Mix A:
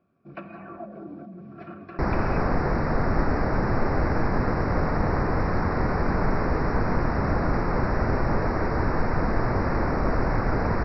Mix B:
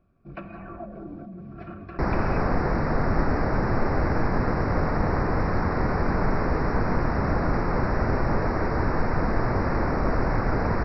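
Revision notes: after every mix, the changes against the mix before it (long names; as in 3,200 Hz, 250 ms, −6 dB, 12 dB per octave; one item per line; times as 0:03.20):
first sound: remove high-pass filter 160 Hz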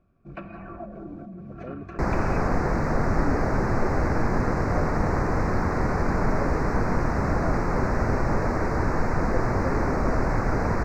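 speech: unmuted
master: remove linear-phase brick-wall low-pass 5,700 Hz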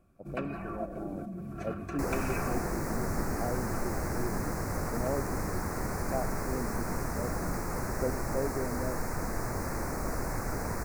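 speech: entry −1.30 s
second sound −10.5 dB
master: remove high-frequency loss of the air 200 metres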